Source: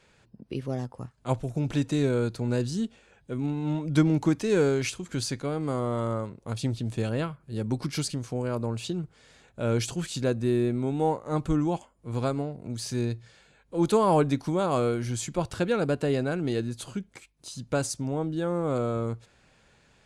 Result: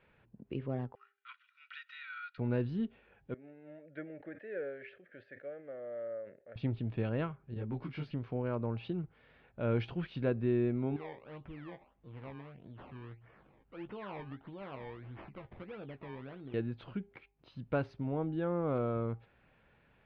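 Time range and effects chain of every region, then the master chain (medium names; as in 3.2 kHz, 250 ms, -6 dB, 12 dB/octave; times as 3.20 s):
0.95–2.38 s: steep high-pass 1.2 kHz 96 dB/octave + comb 2.1 ms, depth 66%
3.34–6.56 s: two resonant band-passes 1 kHz, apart 1.6 oct + decay stretcher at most 140 dB/s
7.54–8.11 s: block-companded coder 7-bit + detune thickener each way 20 cents
10.96–16.54 s: compression 2:1, threshold -50 dBFS + decimation with a swept rate 22× 1.6 Hz + doubling 15 ms -9 dB
whole clip: inverse Chebyshev low-pass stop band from 6.9 kHz, stop band 50 dB; de-hum 401.5 Hz, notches 2; trim -5.5 dB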